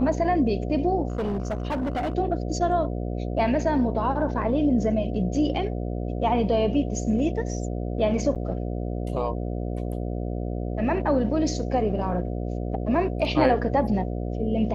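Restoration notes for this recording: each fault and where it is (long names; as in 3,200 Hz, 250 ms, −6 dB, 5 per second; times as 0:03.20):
mains buzz 60 Hz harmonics 12 −29 dBFS
0:01.08–0:02.15: clipping −23.5 dBFS
0:08.35–0:08.36: drop-out 7.8 ms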